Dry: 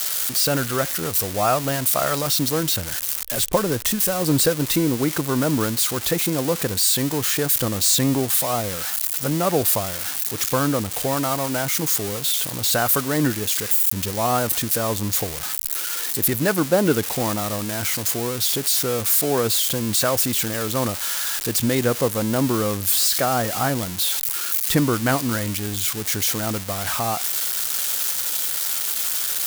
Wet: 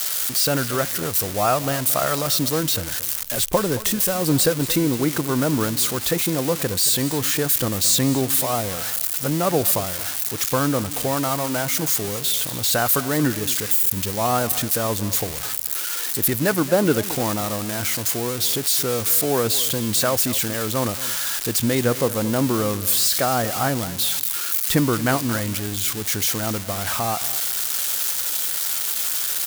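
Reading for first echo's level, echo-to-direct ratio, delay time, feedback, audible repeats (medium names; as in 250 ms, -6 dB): -16.0 dB, -16.0 dB, 225 ms, 24%, 2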